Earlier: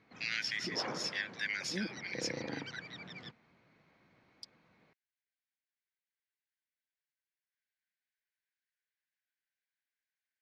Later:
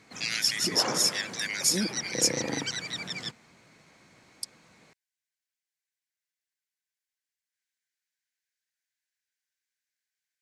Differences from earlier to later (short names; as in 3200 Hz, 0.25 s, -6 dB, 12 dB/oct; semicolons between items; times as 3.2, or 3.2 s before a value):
background +8.0 dB; master: remove air absorption 250 m